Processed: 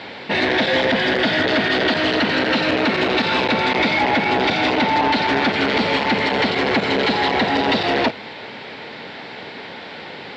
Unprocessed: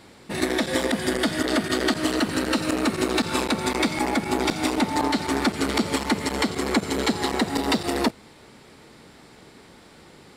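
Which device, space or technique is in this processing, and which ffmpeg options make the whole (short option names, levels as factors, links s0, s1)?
overdrive pedal into a guitar cabinet: -filter_complex "[0:a]asplit=2[s0][s1];[s1]highpass=f=720:p=1,volume=22.4,asoftclip=type=tanh:threshold=0.398[s2];[s0][s2]amix=inputs=2:normalize=0,lowpass=f=5000:p=1,volume=0.501,highpass=84,equalizer=f=100:t=q:w=4:g=5,equalizer=f=340:t=q:w=4:g=-5,equalizer=f=1200:t=q:w=4:g=-9,lowpass=f=4000:w=0.5412,lowpass=f=4000:w=1.3066"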